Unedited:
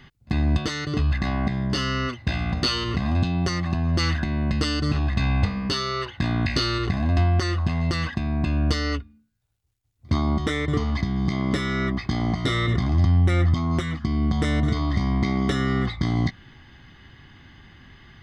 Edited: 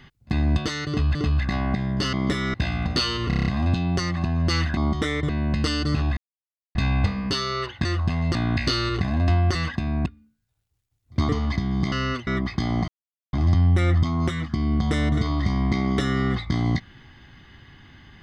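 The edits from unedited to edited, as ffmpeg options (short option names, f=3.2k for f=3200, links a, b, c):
-filter_complex "[0:a]asplit=22[a][b][c][d][e][f][g][h][i][j][k][l][m][n][o][p][q][r][s][t][u][v];[a]atrim=end=1.152[w];[b]atrim=start=0.878:end=1.862[x];[c]atrim=start=11.368:end=11.782[y];[d]atrim=start=2.208:end=2.982[z];[e]atrim=start=2.948:end=2.982[aa];[f]atrim=start=2.948:end=2.982[ab];[g]atrim=start=2.948:end=2.982[ac];[h]atrim=start=2.948:end=2.982[ad];[i]atrim=start=2.948:end=2.982[ae];[j]atrim=start=2.948:end=4.262[af];[k]atrim=start=10.218:end=10.742[ag];[l]atrim=start=4.258:end=5.14,asetpts=PTS-STARTPTS,afade=t=out:st=0.878:d=0.004:c=hsin,apad=pad_dur=0.58[ah];[m]atrim=start=5.14:end=6.242,asetpts=PTS-STARTPTS,afade=t=in:d=0.004:c=hsin[ai];[n]atrim=start=7.438:end=7.942[aj];[o]atrim=start=6.238:end=7.442[ak];[p]atrim=start=7.938:end=8.452[al];[q]atrim=start=8.988:end=10.222[am];[r]atrim=start=10.738:end=11.372[an];[s]atrim=start=1.858:end=2.212[ao];[t]atrim=start=11.778:end=12.39,asetpts=PTS-STARTPTS,afade=t=out:st=0.608:d=0.004:c=hsin[ap];[u]atrim=start=12.39:end=12.84,asetpts=PTS-STARTPTS,volume=0[aq];[v]atrim=start=12.84,asetpts=PTS-STARTPTS,afade=t=in:d=0.004:c=hsin[ar];[w][x]acrossfade=d=0.004:c1=hsin:c2=hsin[as];[as][y]acrossfade=d=0.004:c1=hsin:c2=hsin[at];[at][z]acrossfade=d=0.004:c1=hsin:c2=hsin[au];[au][aa]acrossfade=d=0.004:c1=hsin:c2=hsin[av];[av][ab]acrossfade=d=0.004:c1=hsin:c2=hsin[aw];[aw][ac]acrossfade=d=0.004:c1=hsin:c2=hsin[ax];[ax][ad]acrossfade=d=0.004:c1=hsin:c2=hsin[ay];[ay][ae]acrossfade=d=0.004:c1=hsin:c2=hsin[az];[az][af]acrossfade=d=0.004:c1=hsin:c2=hsin[ba];[ba][ag]acrossfade=d=0.004:c1=hsin:c2=hsin[bb];[ah][ai]concat=n=2:v=0:a=1[bc];[bb][bc]acrossfade=d=0.004:c1=hsin:c2=hsin[bd];[bd][aj]acrossfade=d=0.004:c1=hsin:c2=hsin[be];[be][ak]acrossfade=d=0.004:c1=hsin:c2=hsin[bf];[bf][al]acrossfade=d=0.004:c1=hsin:c2=hsin[bg];[bg][am]acrossfade=d=0.004:c1=hsin:c2=hsin[bh];[bh][an]acrossfade=d=0.004:c1=hsin:c2=hsin[bi];[bi][ao]acrossfade=d=0.004:c1=hsin:c2=hsin[bj];[ap][aq][ar]concat=n=3:v=0:a=1[bk];[bj][bk]acrossfade=d=0.004:c1=hsin:c2=hsin"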